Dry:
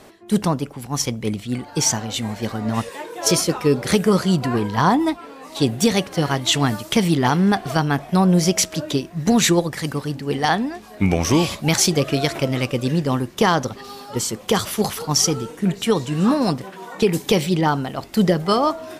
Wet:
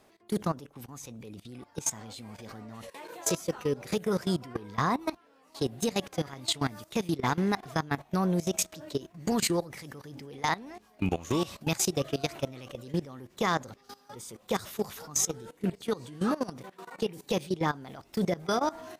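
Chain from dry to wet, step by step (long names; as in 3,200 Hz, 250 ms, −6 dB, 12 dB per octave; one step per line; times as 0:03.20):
formants moved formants +2 semitones
output level in coarse steps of 18 dB
level −8 dB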